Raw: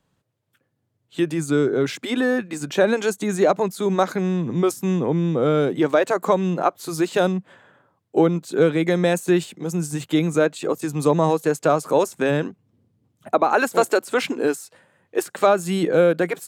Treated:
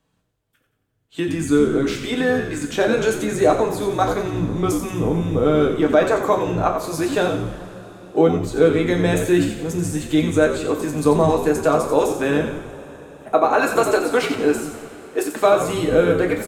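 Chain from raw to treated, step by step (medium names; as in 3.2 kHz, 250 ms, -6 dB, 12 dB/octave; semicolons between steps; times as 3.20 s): frequency-shifting echo 89 ms, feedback 46%, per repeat -71 Hz, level -8 dB; two-slope reverb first 0.33 s, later 4.9 s, from -21 dB, DRR 2 dB; trim -1 dB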